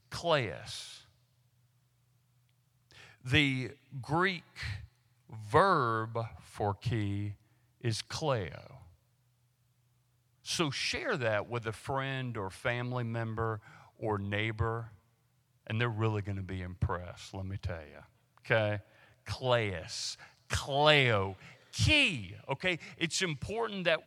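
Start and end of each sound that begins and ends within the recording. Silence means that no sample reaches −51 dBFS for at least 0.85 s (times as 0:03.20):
0:02.91–0:08.87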